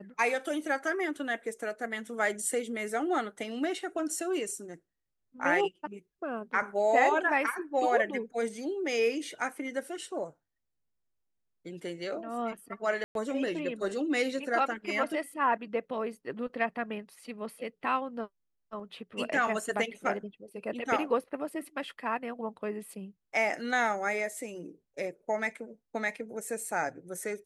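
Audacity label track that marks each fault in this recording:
13.040000	13.150000	gap 0.112 s

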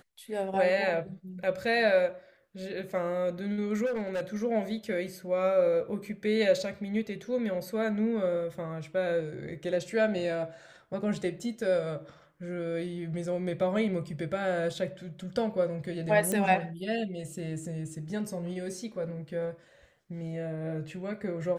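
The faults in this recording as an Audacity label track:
3.850000	4.210000	clipped -28 dBFS
16.320000	16.320000	pop -17 dBFS

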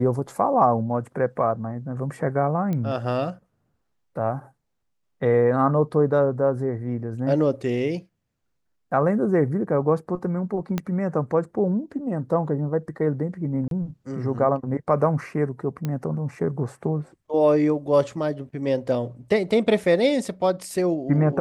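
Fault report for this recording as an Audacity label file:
2.730000	2.730000	pop -17 dBFS
10.780000	10.780000	pop -12 dBFS
13.680000	13.710000	gap 32 ms
15.850000	15.850000	pop -15 dBFS

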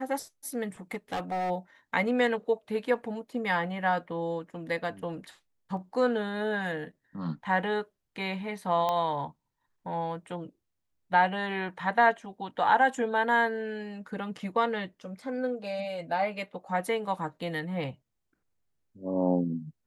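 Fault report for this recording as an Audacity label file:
0.920000	1.510000	clipped -27.5 dBFS
8.890000	8.890000	pop -16 dBFS

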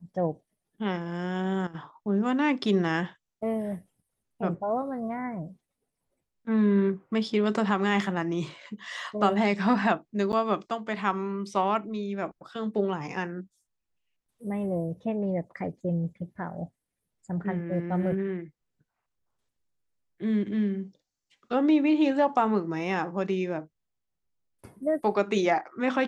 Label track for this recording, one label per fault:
10.320000	10.330000	gap 9.8 ms

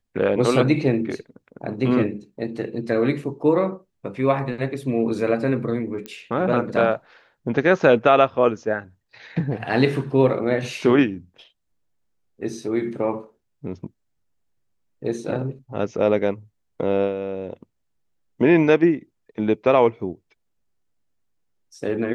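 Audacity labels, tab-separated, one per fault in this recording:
6.060000	6.060000	pop -18 dBFS

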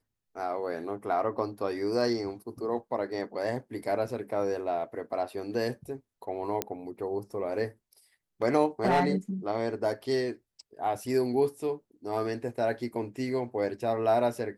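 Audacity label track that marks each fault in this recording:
6.620000	6.620000	pop -11 dBFS
8.840000	9.140000	clipped -18.5 dBFS

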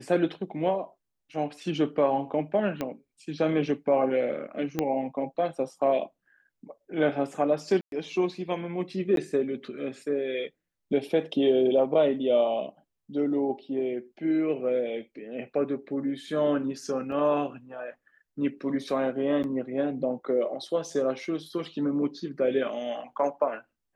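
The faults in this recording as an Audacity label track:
2.810000	2.810000	pop -16 dBFS
4.790000	4.790000	pop -13 dBFS
7.810000	7.920000	gap 0.112 s
9.160000	9.170000	gap 12 ms
17.120000	17.120000	gap 3.8 ms
19.430000	19.440000	gap 9.5 ms

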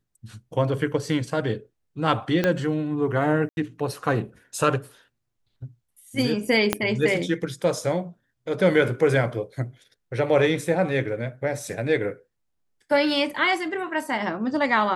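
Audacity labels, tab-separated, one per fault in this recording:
2.440000	2.440000	pop -9 dBFS
3.490000	3.570000	gap 81 ms
6.730000	6.730000	pop -4 dBFS

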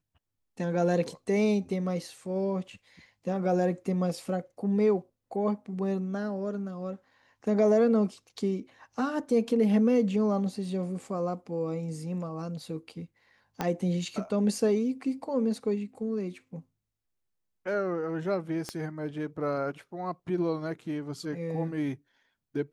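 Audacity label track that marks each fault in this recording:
13.610000	13.610000	pop -15 dBFS
18.690000	18.690000	pop -20 dBFS

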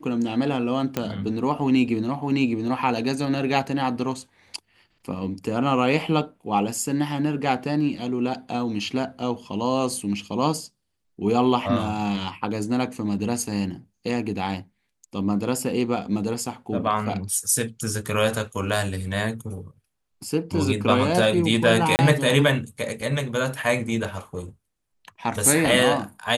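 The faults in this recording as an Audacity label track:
0.970000	0.970000	pop -9 dBFS
21.960000	21.990000	gap 29 ms

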